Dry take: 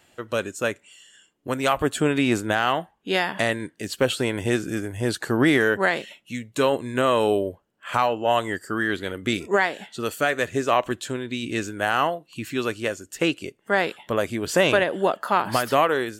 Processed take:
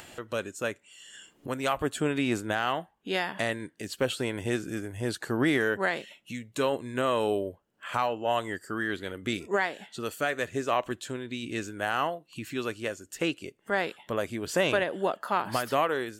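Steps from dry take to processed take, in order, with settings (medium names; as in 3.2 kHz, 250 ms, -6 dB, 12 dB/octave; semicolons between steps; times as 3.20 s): upward compressor, threshold -28 dBFS; trim -6.5 dB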